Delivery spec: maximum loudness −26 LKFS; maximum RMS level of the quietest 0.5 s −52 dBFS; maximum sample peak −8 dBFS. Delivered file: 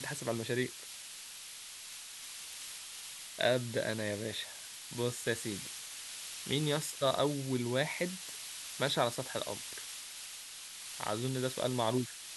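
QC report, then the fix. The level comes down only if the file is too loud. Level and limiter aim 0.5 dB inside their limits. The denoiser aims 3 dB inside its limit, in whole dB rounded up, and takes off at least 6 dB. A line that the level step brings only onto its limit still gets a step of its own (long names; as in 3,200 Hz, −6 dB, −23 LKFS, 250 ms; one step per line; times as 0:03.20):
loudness −36.5 LKFS: in spec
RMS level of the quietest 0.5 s −48 dBFS: out of spec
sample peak −15.0 dBFS: in spec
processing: broadband denoise 7 dB, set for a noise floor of −48 dBFS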